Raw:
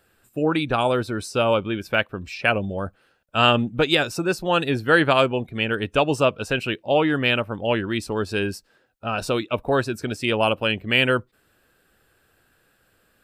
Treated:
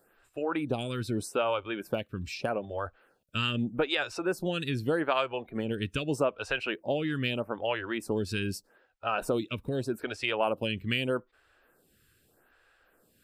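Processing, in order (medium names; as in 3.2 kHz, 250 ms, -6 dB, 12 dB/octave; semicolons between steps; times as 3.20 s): compression 3:1, threshold -24 dBFS, peak gain reduction 10 dB; lamp-driven phase shifter 0.81 Hz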